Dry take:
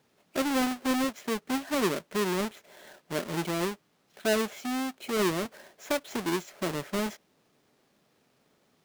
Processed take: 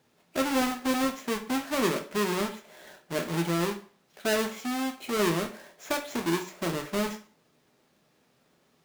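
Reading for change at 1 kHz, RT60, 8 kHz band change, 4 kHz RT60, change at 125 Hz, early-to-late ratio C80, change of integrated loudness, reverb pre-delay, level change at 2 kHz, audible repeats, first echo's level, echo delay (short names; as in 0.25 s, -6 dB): +1.5 dB, 0.40 s, +1.5 dB, 0.40 s, +3.0 dB, 16.0 dB, +1.0 dB, 7 ms, +1.5 dB, none, none, none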